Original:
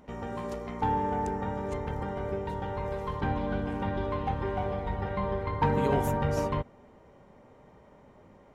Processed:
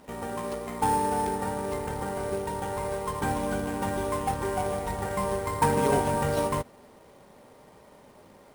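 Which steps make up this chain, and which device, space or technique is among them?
low-pass filter 7,100 Hz 24 dB per octave
early companding sampler (sample-rate reduction 9,500 Hz, jitter 0%; log-companded quantiser 6 bits)
low-shelf EQ 170 Hz −8.5 dB
level +4 dB

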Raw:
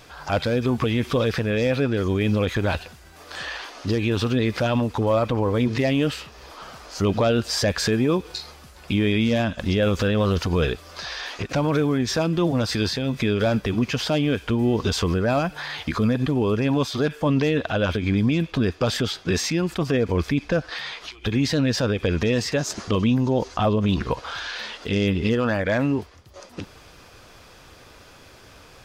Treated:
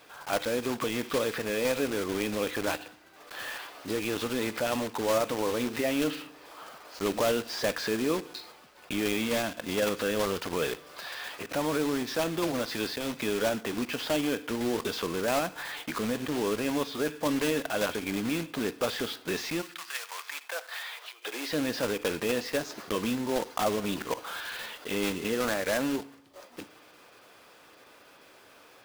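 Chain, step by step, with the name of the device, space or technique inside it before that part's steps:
early digital voice recorder (band-pass filter 280–3,900 Hz; one scale factor per block 3 bits)
0:19.61–0:21.49: high-pass filter 1,300 Hz → 360 Hz 24 dB per octave
feedback delay network reverb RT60 0.73 s, low-frequency decay 1.1×, high-frequency decay 0.9×, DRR 15.5 dB
level −5.5 dB

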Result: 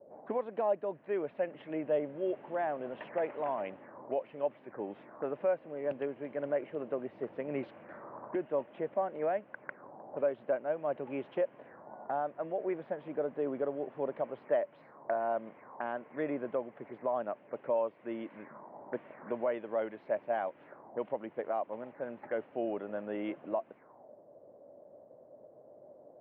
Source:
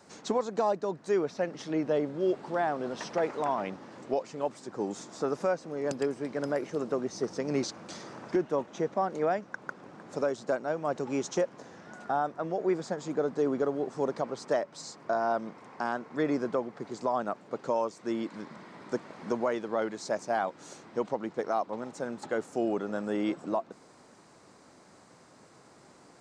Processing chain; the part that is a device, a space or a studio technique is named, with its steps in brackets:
envelope filter bass rig (envelope-controlled low-pass 480–3,000 Hz up, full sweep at −33.5 dBFS; loudspeaker in its box 75–2,200 Hz, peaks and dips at 180 Hz −5 dB, 590 Hz +8 dB, 1,300 Hz −5 dB)
level −7.5 dB

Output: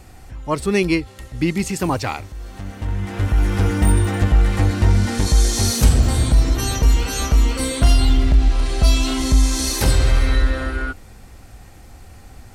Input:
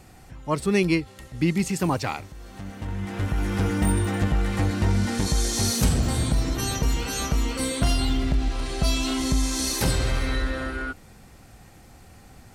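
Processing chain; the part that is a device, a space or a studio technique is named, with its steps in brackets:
low shelf boost with a cut just above (low-shelf EQ 110 Hz +8 dB; parametric band 160 Hz −6 dB 0.88 octaves)
level +4 dB

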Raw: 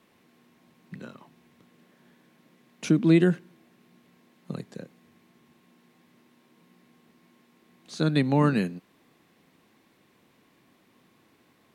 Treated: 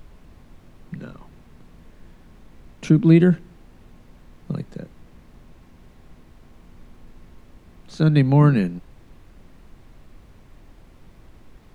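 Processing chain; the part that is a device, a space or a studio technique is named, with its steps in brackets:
car interior (parametric band 140 Hz +8 dB 0.77 octaves; high-shelf EQ 3,900 Hz −7.5 dB; brown noise bed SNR 21 dB)
level +3 dB

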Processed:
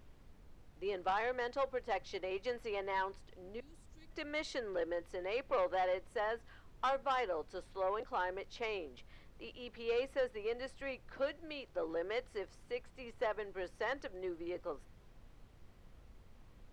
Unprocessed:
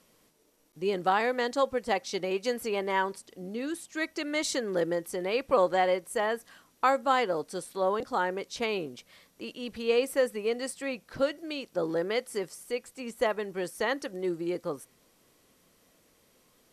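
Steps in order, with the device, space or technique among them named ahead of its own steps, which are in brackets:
0:03.60–0:04.11: Chebyshev band-stop filter 120–7,600 Hz, order 2
aircraft cabin announcement (band-pass filter 410–3,200 Hz; soft clipping −21 dBFS, distortion −14 dB; brown noise bed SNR 16 dB)
level −6 dB

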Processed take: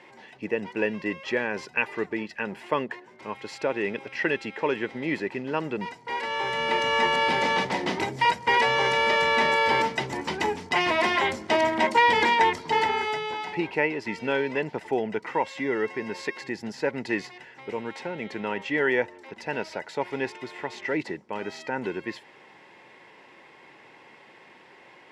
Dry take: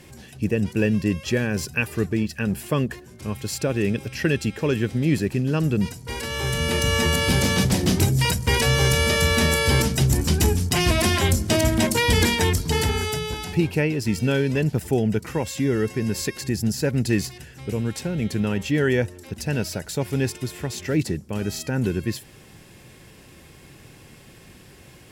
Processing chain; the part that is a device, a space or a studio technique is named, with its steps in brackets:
tin-can telephone (band-pass filter 420–2,800 Hz; hollow resonant body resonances 920/2,000 Hz, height 11 dB, ringing for 25 ms)

